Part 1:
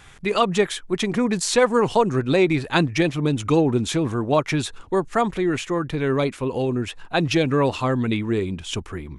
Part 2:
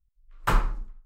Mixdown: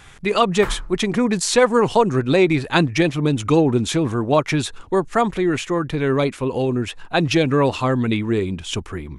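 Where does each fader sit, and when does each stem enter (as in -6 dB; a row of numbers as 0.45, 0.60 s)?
+2.5, -5.5 dB; 0.00, 0.15 s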